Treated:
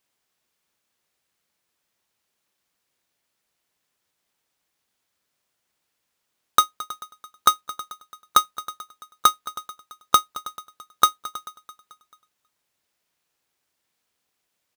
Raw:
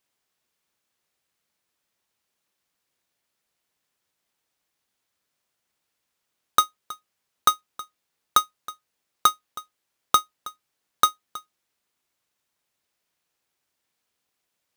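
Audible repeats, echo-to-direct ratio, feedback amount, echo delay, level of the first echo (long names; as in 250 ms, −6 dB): 4, −16.0 dB, 54%, 219 ms, −17.5 dB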